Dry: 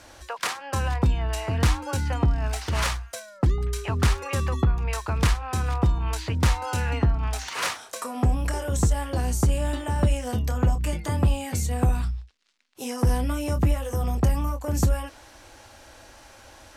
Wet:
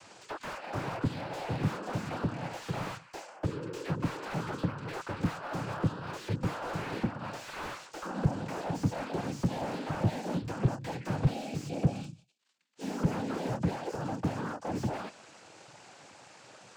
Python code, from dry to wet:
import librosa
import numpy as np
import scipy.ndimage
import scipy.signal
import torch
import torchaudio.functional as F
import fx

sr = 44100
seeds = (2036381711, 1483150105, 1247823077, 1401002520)

y = fx.noise_vocoder(x, sr, seeds[0], bands=8)
y = fx.spec_box(y, sr, start_s=11.31, length_s=1.07, low_hz=860.0, high_hz=2200.0, gain_db=-13)
y = fx.slew_limit(y, sr, full_power_hz=29.0)
y = F.gain(torch.from_numpy(y), -3.5).numpy()